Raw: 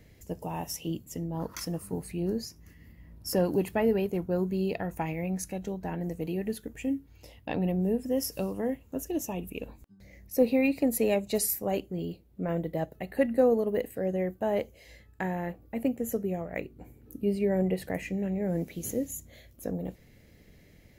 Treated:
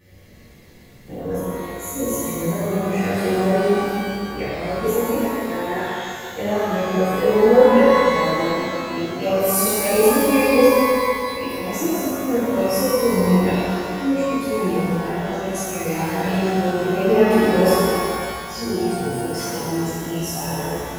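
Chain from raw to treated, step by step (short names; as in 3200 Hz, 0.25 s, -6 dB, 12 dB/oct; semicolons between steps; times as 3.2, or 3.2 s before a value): whole clip reversed; chorus voices 2, 0.34 Hz, delay 11 ms, depth 3 ms; shimmer reverb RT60 2.3 s, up +12 st, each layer -8 dB, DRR -11.5 dB; gain +2 dB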